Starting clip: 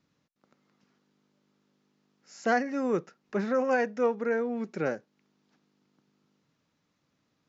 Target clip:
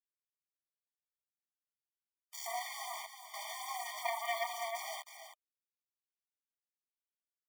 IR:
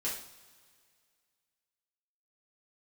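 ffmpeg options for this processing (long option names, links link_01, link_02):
-filter_complex "[0:a]acrossover=split=110|300[link_01][link_02][link_03];[link_01]acompressor=threshold=-58dB:ratio=4[link_04];[link_02]acompressor=threshold=-34dB:ratio=4[link_05];[link_03]acompressor=threshold=-40dB:ratio=4[link_06];[link_04][link_05][link_06]amix=inputs=3:normalize=0[link_07];[1:a]atrim=start_sample=2205,atrim=end_sample=3528[link_08];[link_07][link_08]afir=irnorm=-1:irlink=0,asettb=1/sr,asplit=3[link_09][link_10][link_11];[link_09]atrim=end=4.054[link_12];[link_10]atrim=start=4.05:end=4.47,asetpts=PTS-STARTPTS,afade=type=in:duration=0.004:curve=qsin,afade=type=out:start_time=0.416:duration=0.004:curve=qsin,aeval=exprs='0.112*sin(PI/2*2.82*val(0)/0.112)':channel_layout=same[link_13];[link_11]atrim=start=4.466[link_14];[link_12][link_13]acrossfade=duration=0.004:curve1=hsin:curve2=qsin[link_15];[link_15][link_14]acrossfade=duration=0.004:curve1=qsin:curve2=hsin,asuperstop=centerf=1400:order=12:qfactor=2.1,acrusher=bits=6:mix=0:aa=0.000001,equalizer=frequency=260:width=0.73:gain=-6,aecho=1:1:318:0.266,asoftclip=type=tanh:threshold=-34dB,afftfilt=real='re*eq(mod(floor(b*sr/1024/610),2),1)':imag='im*eq(mod(floor(b*sr/1024/610),2),1)':win_size=1024:overlap=0.75,volume=7dB"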